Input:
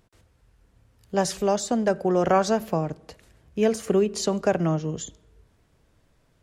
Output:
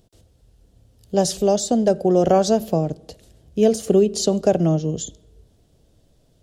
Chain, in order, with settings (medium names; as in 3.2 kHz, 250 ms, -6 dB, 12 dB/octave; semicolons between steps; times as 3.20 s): high-order bell 1.5 kHz -12 dB; trim +5.5 dB